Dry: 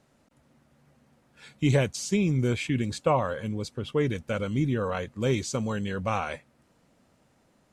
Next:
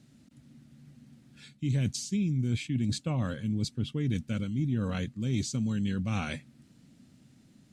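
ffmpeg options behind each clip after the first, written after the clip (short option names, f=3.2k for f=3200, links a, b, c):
-af "equalizer=f=125:t=o:w=1:g=9,equalizer=f=250:t=o:w=1:g=10,equalizer=f=500:t=o:w=1:g=-8,equalizer=f=1k:t=o:w=1:g=-9,equalizer=f=4k:t=o:w=1:g=5,equalizer=f=8k:t=o:w=1:g=3,areverse,acompressor=threshold=-27dB:ratio=6,areverse"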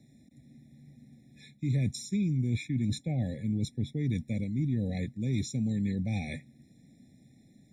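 -filter_complex "[0:a]acrossover=split=260|1900[a][b][c];[b]alimiter=level_in=9dB:limit=-24dB:level=0:latency=1,volume=-9dB[d];[a][d][c]amix=inputs=3:normalize=0,afftfilt=real='re*eq(mod(floor(b*sr/1024/840),2),0)':imag='im*eq(mod(floor(b*sr/1024/840),2),0)':win_size=1024:overlap=0.75"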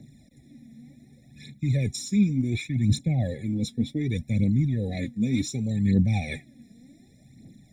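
-af "aphaser=in_gain=1:out_gain=1:delay=4.7:decay=0.61:speed=0.67:type=triangular,volume=4.5dB"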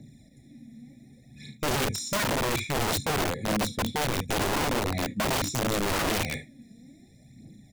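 -af "aecho=1:1:33|52|73:0.335|0.188|0.224,aeval=exprs='(mod(12.6*val(0)+1,2)-1)/12.6':c=same"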